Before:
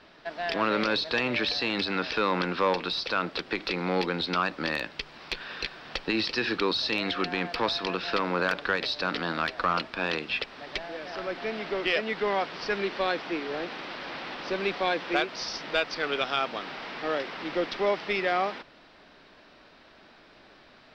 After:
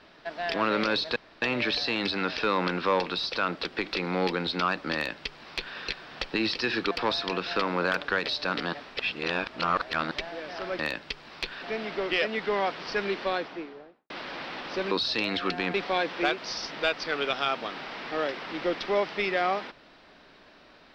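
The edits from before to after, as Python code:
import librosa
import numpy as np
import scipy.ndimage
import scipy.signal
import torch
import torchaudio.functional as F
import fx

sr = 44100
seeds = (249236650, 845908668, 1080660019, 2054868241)

y = fx.studio_fade_out(x, sr, start_s=12.88, length_s=0.96)
y = fx.edit(y, sr, fx.insert_room_tone(at_s=1.16, length_s=0.26),
    fx.duplicate(start_s=4.68, length_s=0.83, to_s=11.36),
    fx.move(start_s=6.65, length_s=0.83, to_s=14.65),
    fx.reverse_span(start_s=9.3, length_s=1.38), tone=tone)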